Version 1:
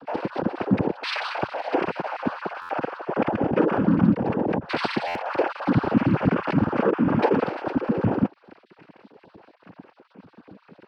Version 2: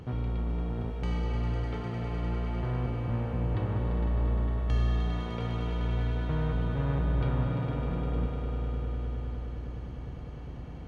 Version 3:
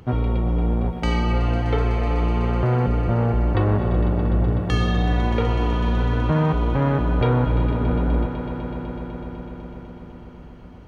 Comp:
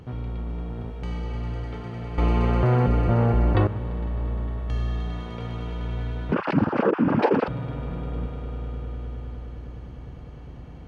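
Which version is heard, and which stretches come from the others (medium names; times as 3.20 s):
2
2.18–3.67 s: from 3
6.32–7.48 s: from 1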